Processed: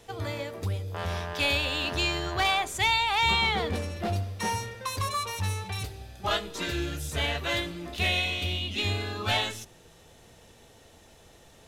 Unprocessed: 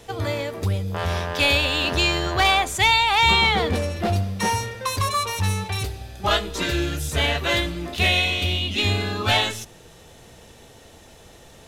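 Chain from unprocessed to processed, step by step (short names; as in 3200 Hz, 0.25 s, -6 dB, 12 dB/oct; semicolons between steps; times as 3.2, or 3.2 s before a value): de-hum 64.49 Hz, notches 9; gain -7 dB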